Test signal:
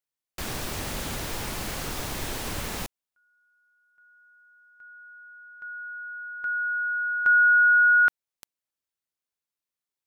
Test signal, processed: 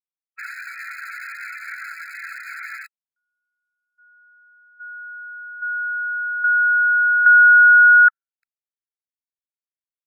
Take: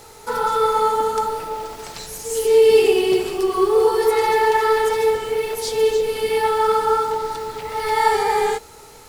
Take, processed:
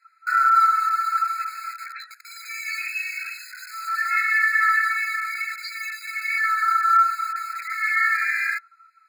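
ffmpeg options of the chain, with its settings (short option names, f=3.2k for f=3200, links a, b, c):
-filter_complex "[0:a]acrossover=split=160|840[a][b][c];[a]acompressor=threshold=-45dB:ratio=2[d];[b]acompressor=threshold=-32dB:ratio=3[e];[c]acompressor=threshold=-20dB:ratio=2[f];[d][e][f]amix=inputs=3:normalize=0,acrossover=split=240 3000:gain=0.0794 1 0.0891[g][h][i];[g][h][i]amix=inputs=3:normalize=0,asplit=2[j][k];[k]acompressor=threshold=-32dB:ratio=16:attack=27:release=53:knee=1:detection=rms,volume=-2.5dB[l];[j][l]amix=inputs=2:normalize=0,afftdn=nr=26:nf=-33,acrossover=split=390|2400[m][n][o];[m]acrusher=bits=6:mix=0:aa=0.000001[p];[p][n][o]amix=inputs=3:normalize=0,afftfilt=real='re*eq(mod(floor(b*sr/1024/1300),2),1)':imag='im*eq(mod(floor(b*sr/1024/1300),2),1)':win_size=1024:overlap=0.75,volume=8.5dB"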